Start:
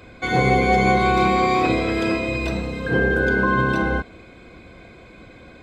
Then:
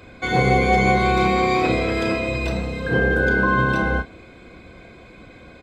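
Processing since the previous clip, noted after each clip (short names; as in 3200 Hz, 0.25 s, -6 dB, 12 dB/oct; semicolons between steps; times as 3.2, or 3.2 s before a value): doubler 32 ms -10.5 dB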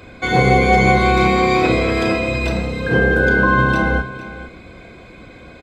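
echo 0.455 s -15.5 dB; gain +4 dB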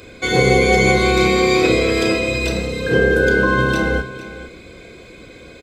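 EQ curve 240 Hz 0 dB, 450 Hz +7 dB, 770 Hz -4 dB, 7000 Hz +11 dB; gain -2.5 dB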